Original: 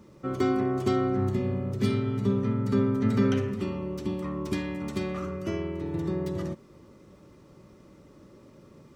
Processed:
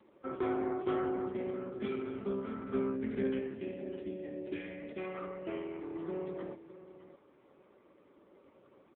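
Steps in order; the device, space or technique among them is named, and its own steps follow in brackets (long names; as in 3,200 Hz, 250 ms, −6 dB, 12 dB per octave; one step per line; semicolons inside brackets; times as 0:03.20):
time-frequency box erased 0:02.95–0:04.97, 610–1,400 Hz
satellite phone (band-pass filter 370–3,200 Hz; single-tap delay 613 ms −14 dB; level −2.5 dB; AMR narrowband 5.9 kbit/s 8,000 Hz)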